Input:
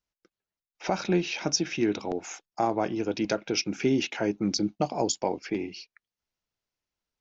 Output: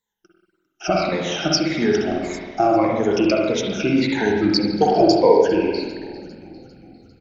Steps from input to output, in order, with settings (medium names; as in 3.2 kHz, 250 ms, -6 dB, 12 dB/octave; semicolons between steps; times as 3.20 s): drifting ripple filter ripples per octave 1, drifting -1.7 Hz, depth 22 dB; 4.76–5.48 s: peaking EQ 420 Hz +11.5 dB 0.62 oct; on a send: frequency-shifting echo 400 ms, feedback 58%, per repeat -48 Hz, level -20 dB; on the sum: spring tank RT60 1.3 s, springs 47/59 ms, chirp 25 ms, DRR -1.5 dB; trim +1 dB